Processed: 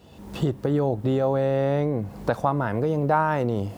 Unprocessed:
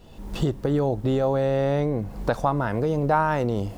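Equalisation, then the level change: HPF 64 Hz 24 dB/oct; dynamic EQ 5800 Hz, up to -5 dB, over -49 dBFS, Q 0.81; 0.0 dB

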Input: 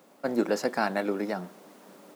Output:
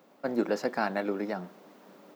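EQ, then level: bell 9700 Hz -10.5 dB 1.1 oct; -2.0 dB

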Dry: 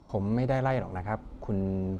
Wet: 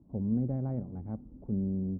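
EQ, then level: band-pass 230 Hz, Q 1.4; air absorption 150 m; tilt -3.5 dB/oct; -7.0 dB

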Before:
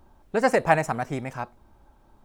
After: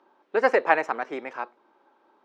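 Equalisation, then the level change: HPF 350 Hz 24 dB/oct; air absorption 230 m; bell 680 Hz -7 dB 0.5 oct; +4.0 dB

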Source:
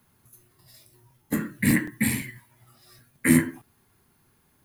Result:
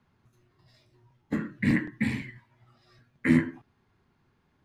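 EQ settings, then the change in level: air absorption 170 m; -2.5 dB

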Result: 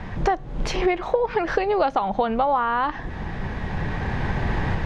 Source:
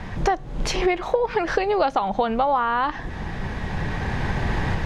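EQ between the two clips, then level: LPF 3400 Hz 6 dB/oct; 0.0 dB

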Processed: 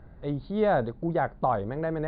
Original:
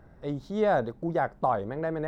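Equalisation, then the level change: brick-wall FIR low-pass 4800 Hz; low shelf 130 Hz +7.5 dB; 0.0 dB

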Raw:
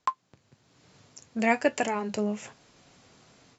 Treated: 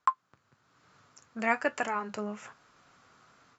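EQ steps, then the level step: bell 1300 Hz +15 dB 0.94 oct; -8.5 dB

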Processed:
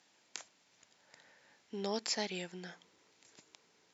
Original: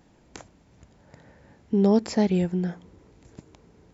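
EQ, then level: BPF 100–5000 Hz; differentiator; +8.5 dB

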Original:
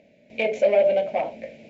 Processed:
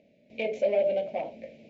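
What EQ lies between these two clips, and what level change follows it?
air absorption 110 m; low shelf 260 Hz -6 dB; bell 1300 Hz -13.5 dB 1.8 oct; 0.0 dB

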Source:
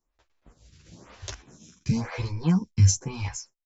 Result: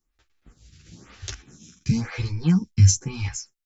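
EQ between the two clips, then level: bell 610 Hz -11 dB 0.91 oct; notch 1000 Hz, Q 5.2; +3.5 dB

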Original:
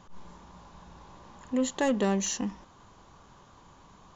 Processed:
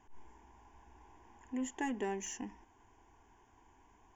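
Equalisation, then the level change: fixed phaser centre 830 Hz, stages 8; -6.5 dB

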